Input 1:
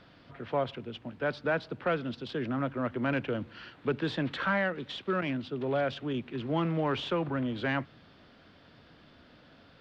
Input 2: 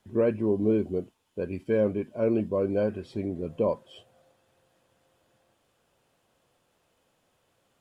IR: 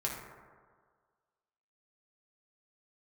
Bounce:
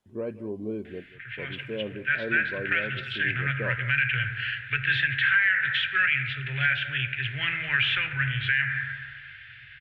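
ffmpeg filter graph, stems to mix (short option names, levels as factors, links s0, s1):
-filter_complex "[0:a]dynaudnorm=f=510:g=7:m=2.24,firequalizer=gain_entry='entry(120,0);entry(190,-29);entry(560,-25);entry(1100,-19);entry(1600,13);entry(2500,14);entry(4800,-13)':delay=0.05:min_phase=1,adelay=850,volume=0.631,asplit=2[s0][s1];[s1]volume=0.631[s2];[1:a]volume=0.355,asplit=2[s3][s4];[s4]volume=0.126[s5];[2:a]atrim=start_sample=2205[s6];[s2][s6]afir=irnorm=-1:irlink=0[s7];[s5]aecho=0:1:182:1[s8];[s0][s3][s7][s8]amix=inputs=4:normalize=0,alimiter=limit=0.224:level=0:latency=1:release=163"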